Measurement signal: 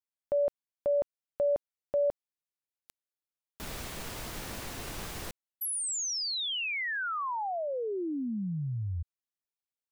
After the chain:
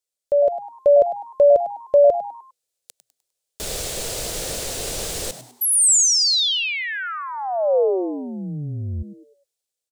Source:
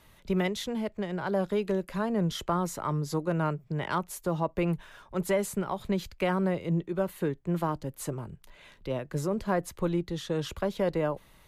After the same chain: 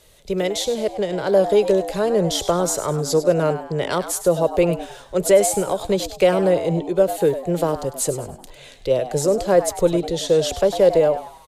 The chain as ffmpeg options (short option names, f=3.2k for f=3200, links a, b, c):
-filter_complex "[0:a]equalizer=f=125:t=o:w=1:g=-3,equalizer=f=250:t=o:w=1:g=-8,equalizer=f=500:t=o:w=1:g=11,equalizer=f=1k:t=o:w=1:g=-8,equalizer=f=2k:t=o:w=1:g=-3,equalizer=f=4k:t=o:w=1:g=4,equalizer=f=8k:t=o:w=1:g=9,dynaudnorm=f=250:g=5:m=5dB,asplit=2[a][b];[b]asplit=4[c][d][e][f];[c]adelay=101,afreqshift=120,volume=-12dB[g];[d]adelay=202,afreqshift=240,volume=-20.4dB[h];[e]adelay=303,afreqshift=360,volume=-28.8dB[i];[f]adelay=404,afreqshift=480,volume=-37.2dB[j];[g][h][i][j]amix=inputs=4:normalize=0[k];[a][k]amix=inputs=2:normalize=0,volume=4dB"